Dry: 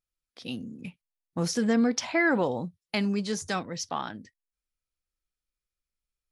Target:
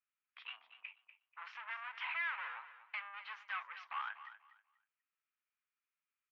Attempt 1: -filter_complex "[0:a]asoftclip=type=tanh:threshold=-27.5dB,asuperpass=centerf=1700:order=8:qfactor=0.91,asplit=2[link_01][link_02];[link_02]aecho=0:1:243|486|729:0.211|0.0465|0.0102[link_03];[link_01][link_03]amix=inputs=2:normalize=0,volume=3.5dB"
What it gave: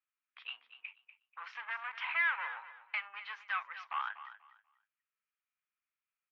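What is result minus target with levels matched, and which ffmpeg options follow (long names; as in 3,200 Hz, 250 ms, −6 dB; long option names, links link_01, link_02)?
soft clipping: distortion −5 dB
-filter_complex "[0:a]asoftclip=type=tanh:threshold=-36dB,asuperpass=centerf=1700:order=8:qfactor=0.91,asplit=2[link_01][link_02];[link_02]aecho=0:1:243|486|729:0.211|0.0465|0.0102[link_03];[link_01][link_03]amix=inputs=2:normalize=0,volume=3.5dB"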